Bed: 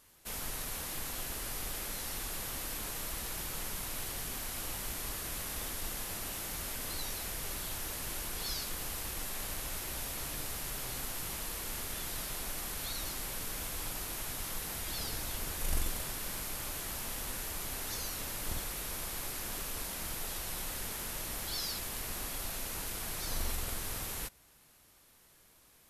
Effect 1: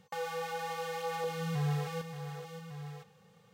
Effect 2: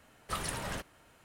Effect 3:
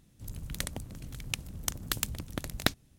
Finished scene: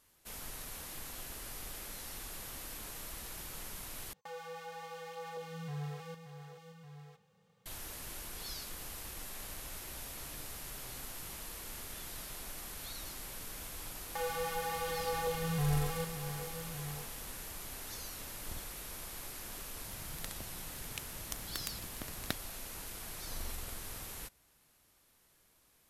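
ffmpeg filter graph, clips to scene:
-filter_complex "[1:a]asplit=2[s0][s1];[0:a]volume=0.501,asplit=2[s2][s3];[s2]atrim=end=4.134[s4];[s0]atrim=end=3.53,asetpts=PTS-STARTPTS,volume=0.376[s5];[s3]atrim=start=7.656[s6];[s1]atrim=end=3.53,asetpts=PTS-STARTPTS,afade=t=in:d=0.004:c=hsin,afade=t=out:st=3.526:d=0.004:c=hsin,adelay=14030[s7];[3:a]atrim=end=2.98,asetpts=PTS-STARTPTS,volume=0.299,afade=t=in:d=0.004:c=hsin,afade=t=out:st=2.976:d=0.004:c=hsin,adelay=19640[s8];[s4][s5]acrossfade=d=0.004:c1=hsin:c2=hsin[s9];[s9][s6]acrossfade=d=0.004:c1=hsin:c2=hsin[s10];[s10][s7][s8]amix=inputs=3:normalize=0"

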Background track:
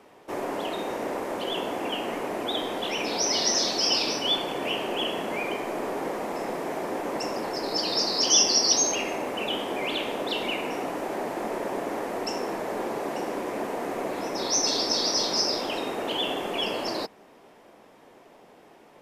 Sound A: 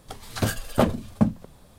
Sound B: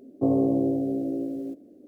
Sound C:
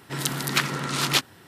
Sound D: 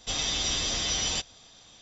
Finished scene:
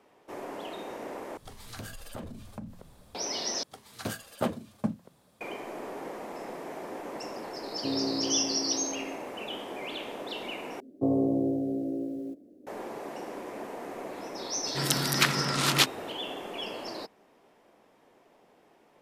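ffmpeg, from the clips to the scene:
-filter_complex "[1:a]asplit=2[s0][s1];[2:a]asplit=2[s2][s3];[0:a]volume=0.376[s4];[s0]acompressor=threshold=0.0126:ratio=4:attack=6.6:release=32:knee=6:detection=rms[s5];[s1]highpass=150[s6];[s2]asplit=2[s7][s8];[s8]adelay=33,volume=0.251[s9];[s7][s9]amix=inputs=2:normalize=0[s10];[s4]asplit=4[s11][s12][s13][s14];[s11]atrim=end=1.374[s15];[s5]atrim=end=1.78,asetpts=PTS-STARTPTS,volume=0.668[s16];[s12]atrim=start=3.146:end=3.634[s17];[s6]atrim=end=1.78,asetpts=PTS-STARTPTS,volume=0.376[s18];[s13]atrim=start=5.406:end=10.804[s19];[s3]atrim=end=1.87,asetpts=PTS-STARTPTS,volume=0.668[s20];[s14]atrim=start=12.666[s21];[s10]atrim=end=1.87,asetpts=PTS-STARTPTS,volume=0.282,afade=t=in:d=0.004:c=hsin,afade=t=out:st=1.866:d=0.004:c=hsin,adelay=336042S[s22];[3:a]atrim=end=1.47,asetpts=PTS-STARTPTS,volume=0.891,afade=t=in:d=0.004:c=hsin,afade=t=out:st=1.466:d=0.004:c=hsin,adelay=14650[s23];[s15][s16]acrossfade=d=0.004:c1=hsin:c2=hsin[s24];[s24][s17]acrossfade=d=0.004:c1=hsin:c2=hsin[s25];[s25][s18]acrossfade=d=0.004:c1=hsin:c2=hsin[s26];[s26][s19]acrossfade=d=0.004:c1=hsin:c2=hsin[s27];[s27][s20]acrossfade=d=0.004:c1=hsin:c2=hsin[s28];[s28][s21]acrossfade=d=0.004:c1=hsin:c2=hsin[s29];[s29][s22][s23]amix=inputs=3:normalize=0"

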